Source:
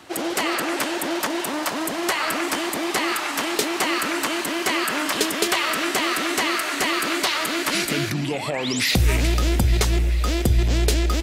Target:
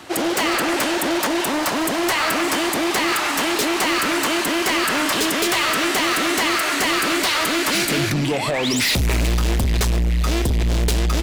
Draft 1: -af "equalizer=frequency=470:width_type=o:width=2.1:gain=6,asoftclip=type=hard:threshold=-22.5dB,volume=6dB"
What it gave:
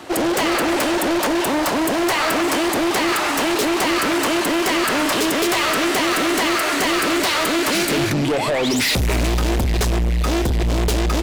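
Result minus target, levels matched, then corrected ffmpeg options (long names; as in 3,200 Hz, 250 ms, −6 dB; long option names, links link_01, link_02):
500 Hz band +2.5 dB
-af "asoftclip=type=hard:threshold=-22.5dB,volume=6dB"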